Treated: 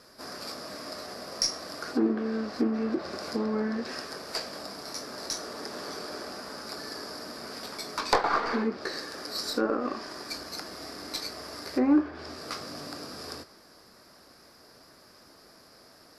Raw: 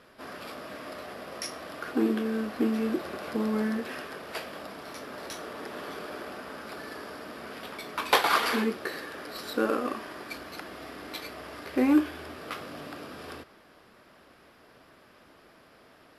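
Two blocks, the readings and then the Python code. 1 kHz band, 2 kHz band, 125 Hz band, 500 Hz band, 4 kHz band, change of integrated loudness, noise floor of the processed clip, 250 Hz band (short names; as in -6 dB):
-1.0 dB, -3.5 dB, -1.0 dB, 0.0 dB, +3.0 dB, 0.0 dB, -56 dBFS, -0.5 dB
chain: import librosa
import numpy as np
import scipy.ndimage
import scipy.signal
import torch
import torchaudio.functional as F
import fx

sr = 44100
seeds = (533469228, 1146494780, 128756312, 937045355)

y = fx.tracing_dist(x, sr, depth_ms=0.071)
y = fx.env_lowpass_down(y, sr, base_hz=1700.0, full_db=-22.5)
y = fx.high_shelf_res(y, sr, hz=3900.0, db=7.5, q=3.0)
y = fx.doubler(y, sr, ms=21.0, db=-13)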